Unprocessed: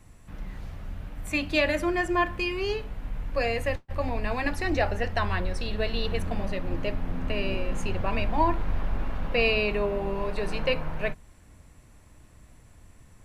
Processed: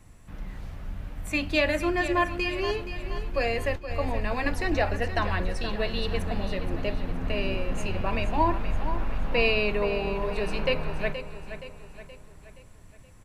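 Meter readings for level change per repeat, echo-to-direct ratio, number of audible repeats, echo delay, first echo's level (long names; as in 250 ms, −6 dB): −6.5 dB, −10.0 dB, 4, 473 ms, −11.0 dB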